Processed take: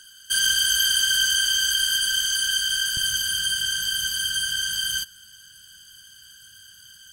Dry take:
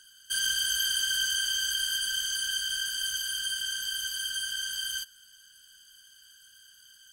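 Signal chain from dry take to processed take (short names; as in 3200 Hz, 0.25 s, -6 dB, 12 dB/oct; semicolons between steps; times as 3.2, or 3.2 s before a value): bell 110 Hz +2.5 dB 2.2 oct, from 2.97 s +11.5 dB; gain +7.5 dB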